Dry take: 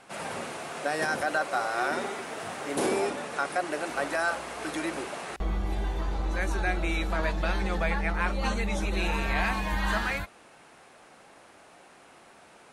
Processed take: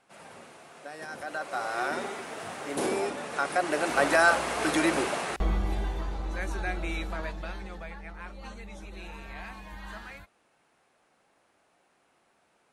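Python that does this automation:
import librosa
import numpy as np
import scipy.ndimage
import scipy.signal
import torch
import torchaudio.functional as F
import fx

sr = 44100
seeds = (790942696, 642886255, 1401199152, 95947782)

y = fx.gain(x, sr, db=fx.line((1.0, -13.0), (1.7, -2.0), (3.13, -2.0), (4.11, 7.0), (5.06, 7.0), (6.18, -4.0), (6.98, -4.0), (7.93, -14.5)))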